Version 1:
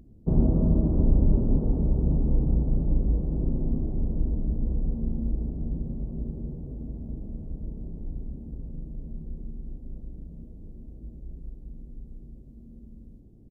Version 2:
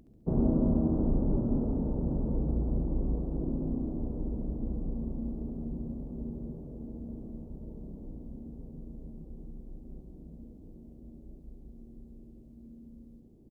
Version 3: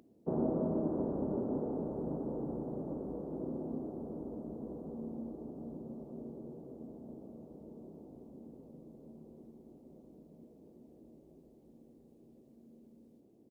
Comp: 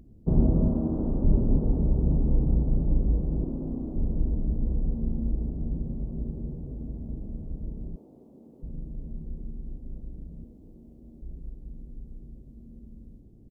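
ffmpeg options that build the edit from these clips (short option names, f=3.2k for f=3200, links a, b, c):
-filter_complex "[1:a]asplit=3[a][b][c];[0:a]asplit=5[d][e][f][g][h];[d]atrim=end=0.682[i];[a]atrim=start=0.678:end=1.242[j];[e]atrim=start=1.238:end=3.442[k];[b]atrim=start=3.438:end=3.962[l];[f]atrim=start=3.958:end=7.962[m];[2:a]atrim=start=7.958:end=8.622[n];[g]atrim=start=8.618:end=10.442[o];[c]atrim=start=10.438:end=11.222[p];[h]atrim=start=11.218[q];[i][j]acrossfade=d=0.004:c1=hsin:c2=hsin[r];[r][k]acrossfade=d=0.004:c1=hsin:c2=hsin[s];[s][l]acrossfade=d=0.004:c1=hsin:c2=hsin[t];[t][m]acrossfade=d=0.004:c1=hsin:c2=hsin[u];[u][n]acrossfade=d=0.004:c1=hsin:c2=hsin[v];[v][o]acrossfade=d=0.004:c1=hsin:c2=hsin[w];[w][p]acrossfade=d=0.004:c1=hsin:c2=hsin[x];[x][q]acrossfade=d=0.004:c1=hsin:c2=hsin"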